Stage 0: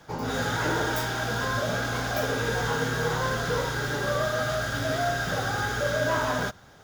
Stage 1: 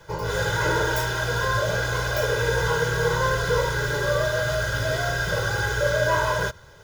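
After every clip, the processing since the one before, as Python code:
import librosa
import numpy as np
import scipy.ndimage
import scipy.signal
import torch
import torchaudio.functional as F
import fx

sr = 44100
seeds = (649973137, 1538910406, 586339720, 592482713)

y = fx.low_shelf(x, sr, hz=73.0, db=5.0)
y = y + 0.98 * np.pad(y, (int(2.0 * sr / 1000.0), 0))[:len(y)]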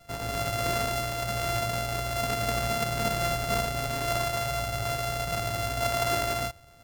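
y = np.r_[np.sort(x[:len(x) // 64 * 64].reshape(-1, 64), axis=1).ravel(), x[len(x) // 64 * 64:]]
y = y * 10.0 ** (-5.5 / 20.0)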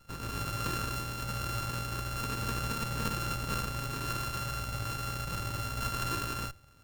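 y = fx.lower_of_two(x, sr, delay_ms=0.7)
y = y * 10.0 ** (-3.0 / 20.0)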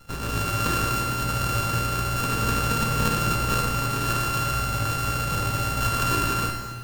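y = fx.rev_plate(x, sr, seeds[0], rt60_s=1.8, hf_ratio=0.9, predelay_ms=0, drr_db=2.0)
y = y * 10.0 ** (8.5 / 20.0)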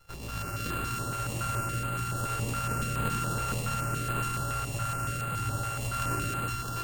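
y = x + 10.0 ** (-3.0 / 20.0) * np.pad(x, (int(659 * sr / 1000.0), 0))[:len(x)]
y = fx.filter_held_notch(y, sr, hz=7.1, low_hz=230.0, high_hz=5700.0)
y = y * 10.0 ** (-8.5 / 20.0)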